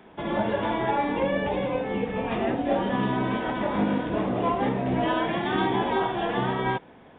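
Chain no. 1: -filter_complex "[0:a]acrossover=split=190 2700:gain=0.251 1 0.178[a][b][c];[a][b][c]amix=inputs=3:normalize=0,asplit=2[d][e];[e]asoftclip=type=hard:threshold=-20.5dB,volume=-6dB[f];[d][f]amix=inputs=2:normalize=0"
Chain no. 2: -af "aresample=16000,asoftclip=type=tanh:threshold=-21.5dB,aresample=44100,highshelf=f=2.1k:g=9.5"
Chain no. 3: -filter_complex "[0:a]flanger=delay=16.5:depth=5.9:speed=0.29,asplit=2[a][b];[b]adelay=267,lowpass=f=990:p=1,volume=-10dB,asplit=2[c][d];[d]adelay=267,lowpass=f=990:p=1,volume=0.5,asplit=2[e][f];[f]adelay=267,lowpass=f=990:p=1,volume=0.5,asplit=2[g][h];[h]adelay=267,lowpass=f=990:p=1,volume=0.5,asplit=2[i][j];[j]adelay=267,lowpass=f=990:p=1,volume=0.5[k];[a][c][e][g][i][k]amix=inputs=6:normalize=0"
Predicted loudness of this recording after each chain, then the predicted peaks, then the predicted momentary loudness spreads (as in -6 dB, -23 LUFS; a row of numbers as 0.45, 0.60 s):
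-24.0, -27.0, -29.0 LUFS; -10.5, -16.5, -15.5 dBFS; 3, 3, 4 LU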